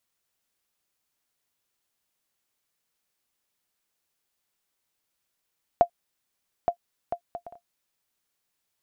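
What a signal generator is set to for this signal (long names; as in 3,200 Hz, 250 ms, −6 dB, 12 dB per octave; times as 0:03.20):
bouncing ball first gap 0.87 s, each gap 0.51, 695 Hz, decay 87 ms −7.5 dBFS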